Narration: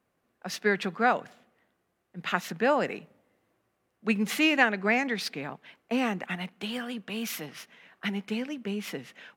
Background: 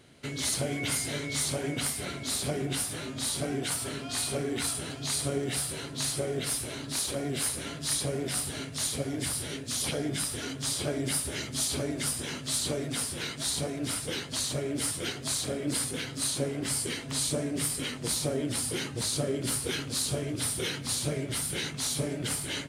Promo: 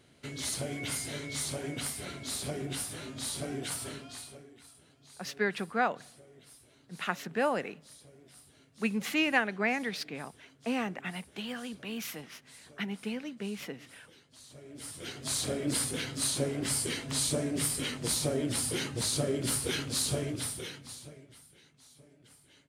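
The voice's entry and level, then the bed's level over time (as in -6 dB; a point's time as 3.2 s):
4.75 s, -4.5 dB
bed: 3.91 s -5 dB
4.57 s -25 dB
14.33 s -25 dB
15.39 s -0.5 dB
20.24 s -0.5 dB
21.56 s -27.5 dB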